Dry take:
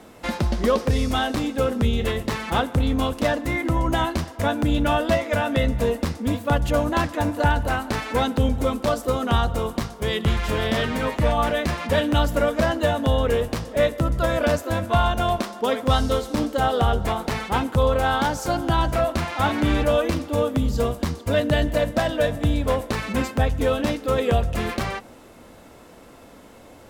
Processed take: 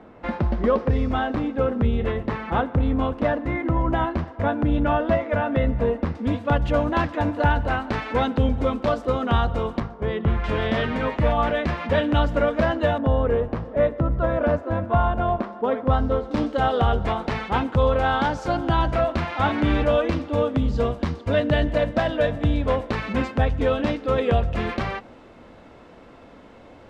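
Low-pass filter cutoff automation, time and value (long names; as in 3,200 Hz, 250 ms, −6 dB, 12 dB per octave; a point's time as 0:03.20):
1,800 Hz
from 0:06.15 3,100 Hz
from 0:09.80 1,500 Hz
from 0:10.44 2,900 Hz
from 0:12.98 1,400 Hz
from 0:16.31 3,400 Hz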